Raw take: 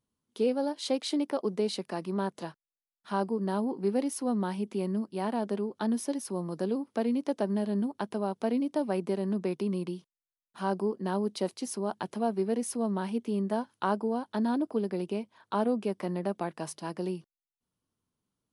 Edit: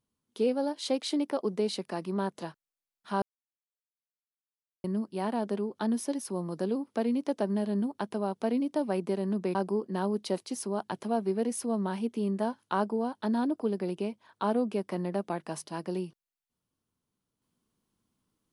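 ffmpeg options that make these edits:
-filter_complex "[0:a]asplit=4[a][b][c][d];[a]atrim=end=3.22,asetpts=PTS-STARTPTS,afade=t=out:st=3.216:d=0.004:c=hsin[e];[b]atrim=start=3.22:end=4.84,asetpts=PTS-STARTPTS,volume=0[f];[c]atrim=start=4.84:end=9.552,asetpts=PTS-STARTPTS,afade=t=in:d=0.004:c=hsin[g];[d]atrim=start=10.658[h];[e][f][g]concat=n=3:v=0:a=1[i];[i][h]acrossfade=d=0.004:c1=hsin:c2=hsin"

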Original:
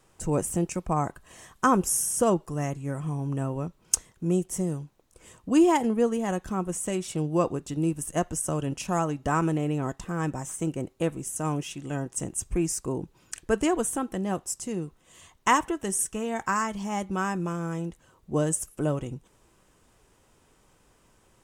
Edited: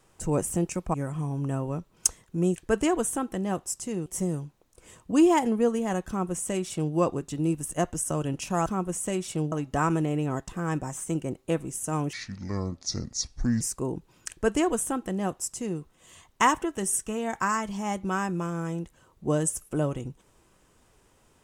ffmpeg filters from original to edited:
-filter_complex "[0:a]asplit=8[a][b][c][d][e][f][g][h];[a]atrim=end=0.942[i];[b]atrim=start=2.818:end=4.442[j];[c]atrim=start=13.358:end=14.862[k];[d]atrim=start=4.438:end=9.042[l];[e]atrim=start=6.458:end=7.322[m];[f]atrim=start=9.038:end=11.654[n];[g]atrim=start=11.65:end=12.67,asetpts=PTS-STARTPTS,asetrate=30429,aresample=44100,atrim=end_sample=65191,asetpts=PTS-STARTPTS[o];[h]atrim=start=12.666[p];[i][j]acrossfade=d=0.004:c1=hsin:c2=hsin[q];[q][k]acrossfade=d=0.004:c1=hsin:c2=hsin[r];[r][l]acrossfade=d=0.004:c1=hsin:c2=hsin[s];[s][m]acrossfade=d=0.004:c1=hsin:c2=hsin[t];[t][n]acrossfade=d=0.004:c1=hsin:c2=hsin[u];[u][o]acrossfade=d=0.004:c1=hsin:c2=hsin[v];[v][p]acrossfade=d=0.004:c1=hsin:c2=hsin"

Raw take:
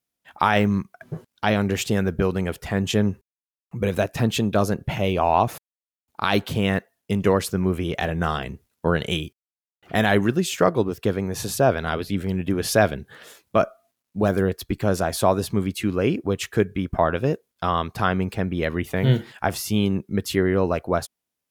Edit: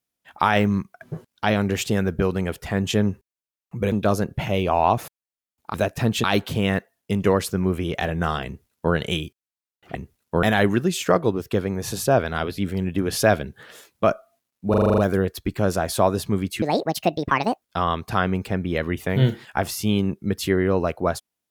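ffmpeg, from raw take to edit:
-filter_complex "[0:a]asplit=15[a][b][c][d][e][f][g][h][i][j][k][l][m][n][o];[a]atrim=end=3.922[p];[b]atrim=start=4.418:end=6.242[q];[c]atrim=start=3.918:end=4.422[r];[d]atrim=start=6.238:end=9.952[s];[e]atrim=start=8.458:end=8.942[t];[f]atrim=start=9.948:end=14.262[u];[g]atrim=start=14.218:end=14.262[v];[h]atrim=start=14.218:end=14.262[w];[i]atrim=start=14.218:end=14.262[x];[j]atrim=start=14.218:end=14.262[y];[k]atrim=start=14.218:end=14.262[z];[l]atrim=start=14.218:end=14.262[aa];[m]atrim=start=14.218:end=15.864[ab];[n]atrim=start=15.86:end=17.49,asetpts=PTS-STARTPTS,asetrate=71883,aresample=44100[ac];[o]atrim=start=17.486[ad];[p][q]acrossfade=d=0.004:c1=hsin:c2=hsin[ae];[ae][r]acrossfade=d=0.004:c1=hsin:c2=hsin[af];[af][s]acrossfade=d=0.004:c1=hsin:c2=hsin[ag];[ag][t]acrossfade=d=0.004:c1=hsin:c2=hsin[ah];[ah][u]acrossfade=d=0.004:c1=hsin:c2=hsin[ai];[ai][v]acrossfade=d=0.004:c1=hsin:c2=hsin[aj];[aj][w]acrossfade=d=0.004:c1=hsin:c2=hsin[ak];[ak][x]acrossfade=d=0.004:c1=hsin:c2=hsin[al];[al][y]acrossfade=d=0.004:c1=hsin:c2=hsin[am];[am][z]acrossfade=d=0.004:c1=hsin:c2=hsin[an];[an][aa]acrossfade=d=0.004:c1=hsin:c2=hsin[ao];[ao][ab]acrossfade=d=0.004:c1=hsin:c2=hsin[ap];[ap][ac]acrossfade=d=0.004:c1=hsin:c2=hsin[aq];[aq][ad]acrossfade=d=0.004:c1=hsin:c2=hsin"

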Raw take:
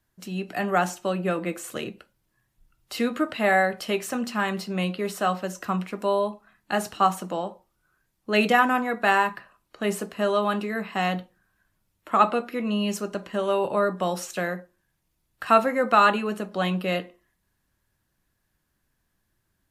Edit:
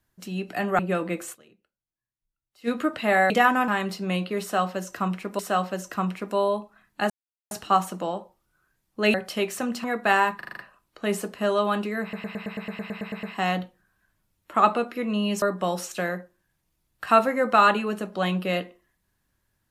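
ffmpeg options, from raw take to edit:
-filter_complex "[0:a]asplit=27[a][b][c][d][e][f][g][h][i][j][k][l][m][n][o][p][q][r][s][t][u][v][w][x][y][z][aa];[a]atrim=end=0.792[ab];[b]atrim=start=1.148:end=1.87,asetpts=PTS-STARTPTS,afade=t=out:st=0.532:d=0.19:c=exp:silence=0.0630957[ac];[c]atrim=start=1.87:end=2.85,asetpts=PTS-STARTPTS,volume=-24dB[ad];[d]atrim=start=2.85:end=3.662,asetpts=PTS-STARTPTS,afade=t=in:d=0.19:c=exp:silence=0.0630957[ae];[e]atrim=start=8.438:end=8.822[af];[f]atrim=start=4.358:end=6.072[ag];[g]atrim=start=5.098:end=6.81,asetpts=PTS-STARTPTS,afade=t=out:st=1.708:d=0.004:c=hsin,apad=pad_dur=0.41[ah];[h]atrim=start=6.81:end=8.442,asetpts=PTS-STARTPTS,afade=t=in:d=0.004:c=hsin[ai];[i]atrim=start=3.658:end=4.362[aj];[j]atrim=start=8.818:end=9.392[ak];[k]atrim=start=9.348:end=9.392[al];[l]atrim=start=9.348:end=9.392[am];[m]atrim=start=9.348:end=9.392[an];[n]atrim=start=9.348:end=9.392[ao];[o]atrim=start=9.348:end=10.912[ap];[p]atrim=start=10.798:end=10.912[aq];[q]atrim=start=10.798:end=10.912[ar];[r]atrim=start=10.798:end=10.912[as];[s]atrim=start=10.798:end=10.912[at];[t]atrim=start=10.798:end=10.912[au];[u]atrim=start=10.798:end=10.912[av];[v]atrim=start=10.798:end=10.912[aw];[w]atrim=start=10.798:end=10.912[ax];[x]atrim=start=10.798:end=10.912[ay];[y]atrim=start=10.798:end=10.912[az];[z]atrim=start=10.798:end=12.992[ba];[aa]atrim=start=13.808[bb];[ac][ad][ae]concat=n=3:v=0:a=1[bc];[ab][bc]acrossfade=d=0.004:c1=hsin:c2=hsin[bd];[bd][af]acrossfade=d=0.004:c1=hsin:c2=hsin[be];[be][ag]acrossfade=d=0.004:c1=hsin:c2=hsin[bf];[ah][ai]concat=n=2:v=0:a=1[bg];[bf][bg]acrossfade=d=0.004:c1=hsin:c2=hsin[bh];[bh][aj]acrossfade=d=0.004:c1=hsin:c2=hsin[bi];[bi][ak]acrossfade=d=0.004:c1=hsin:c2=hsin[bj];[bj][al]acrossfade=d=0.004:c1=hsin:c2=hsin[bk];[bk][am]acrossfade=d=0.004:c1=hsin:c2=hsin[bl];[bl][an]acrossfade=d=0.004:c1=hsin:c2=hsin[bm];[bm][ao]acrossfade=d=0.004:c1=hsin:c2=hsin[bn];[bn][ap]acrossfade=d=0.004:c1=hsin:c2=hsin[bo];[bo][aq]acrossfade=d=0.004:c1=hsin:c2=hsin[bp];[bp][ar]acrossfade=d=0.004:c1=hsin:c2=hsin[bq];[bq][as]acrossfade=d=0.004:c1=hsin:c2=hsin[br];[br][at]acrossfade=d=0.004:c1=hsin:c2=hsin[bs];[bs][au]acrossfade=d=0.004:c1=hsin:c2=hsin[bt];[bt][av]acrossfade=d=0.004:c1=hsin:c2=hsin[bu];[bu][aw]acrossfade=d=0.004:c1=hsin:c2=hsin[bv];[bv][ax]acrossfade=d=0.004:c1=hsin:c2=hsin[bw];[bw][ay]acrossfade=d=0.004:c1=hsin:c2=hsin[bx];[bx][az]acrossfade=d=0.004:c1=hsin:c2=hsin[by];[by][ba]acrossfade=d=0.004:c1=hsin:c2=hsin[bz];[bz][bb]acrossfade=d=0.004:c1=hsin:c2=hsin"

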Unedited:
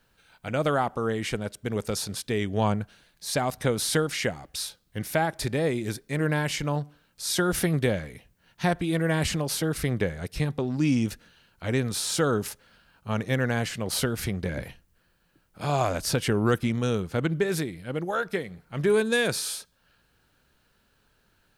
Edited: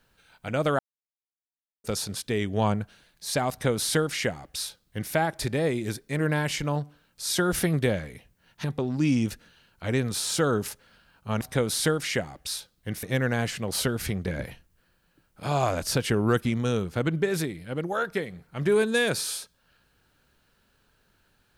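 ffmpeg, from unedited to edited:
-filter_complex "[0:a]asplit=6[a][b][c][d][e][f];[a]atrim=end=0.79,asetpts=PTS-STARTPTS,afade=t=out:st=0.786:d=0.004:c=hsin[g];[b]atrim=start=0.79:end=1.84,asetpts=PTS-STARTPTS,volume=0[h];[c]atrim=start=1.84:end=8.642,asetpts=PTS-STARTPTS,afade=t=in:d=0.004:c=hsin[i];[d]atrim=start=10.438:end=13.212[j];[e]atrim=start=3.498:end=5.122[k];[f]atrim=start=13.208[l];[g][h][i]concat=n=3:v=0:a=1[m];[m][j]acrossfade=d=0.004:c1=hsin:c2=hsin[n];[n][k]acrossfade=d=0.004:c1=hsin:c2=hsin[o];[o][l]acrossfade=d=0.004:c1=hsin:c2=hsin"

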